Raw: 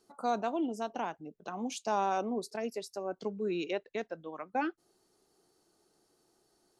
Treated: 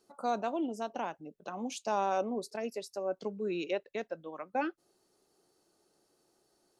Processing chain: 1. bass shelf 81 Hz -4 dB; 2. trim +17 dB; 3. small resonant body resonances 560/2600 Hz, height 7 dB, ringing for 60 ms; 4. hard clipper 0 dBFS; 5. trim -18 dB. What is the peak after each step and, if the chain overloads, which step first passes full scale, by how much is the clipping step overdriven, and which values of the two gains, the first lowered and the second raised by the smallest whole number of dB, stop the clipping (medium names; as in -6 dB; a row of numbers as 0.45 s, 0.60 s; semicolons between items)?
-19.5 dBFS, -2.5 dBFS, -1.5 dBFS, -1.5 dBFS, -19.5 dBFS; nothing clips